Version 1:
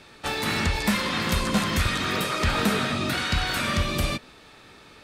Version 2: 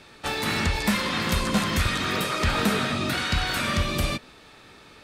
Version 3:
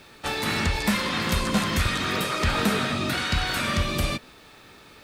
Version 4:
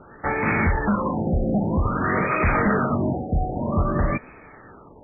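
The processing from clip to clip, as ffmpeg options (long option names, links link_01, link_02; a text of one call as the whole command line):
ffmpeg -i in.wav -af anull out.wav
ffmpeg -i in.wav -af "acrusher=bits=9:mix=0:aa=0.000001" out.wav
ffmpeg -i in.wav -af "aeval=exprs='0.119*(abs(mod(val(0)/0.119+3,4)-2)-1)':channel_layout=same,afftfilt=real='re*lt(b*sr/1024,800*pow(2600/800,0.5+0.5*sin(2*PI*0.52*pts/sr)))':imag='im*lt(b*sr/1024,800*pow(2600/800,0.5+0.5*sin(2*PI*0.52*pts/sr)))':win_size=1024:overlap=0.75,volume=6dB" out.wav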